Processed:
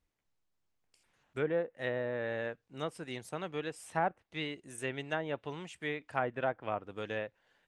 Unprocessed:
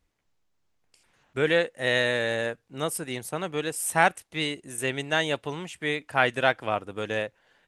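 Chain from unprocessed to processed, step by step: low-pass that closes with the level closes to 990 Hz, closed at -20 dBFS; trim -8 dB

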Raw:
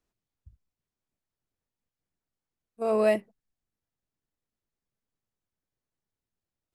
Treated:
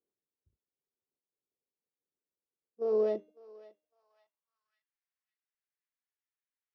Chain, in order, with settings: sorted samples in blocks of 8 samples; on a send: thinning echo 553 ms, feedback 23%, high-pass 1.1 kHz, level -16 dB; on the sum: band-pass sweep 430 Hz -> 1.9 kHz, 3.62–4.95 s; resonant high shelf 5.5 kHz -11 dB, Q 1.5; band-stop 660 Hz, Q 13; de-hum 307.4 Hz, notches 35

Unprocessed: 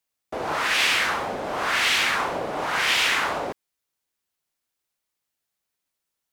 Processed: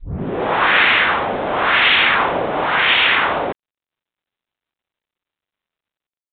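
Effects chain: tape start-up on the opening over 1.06 s; level rider gain up to 9 dB; trim +1.5 dB; G.726 40 kbps 8 kHz

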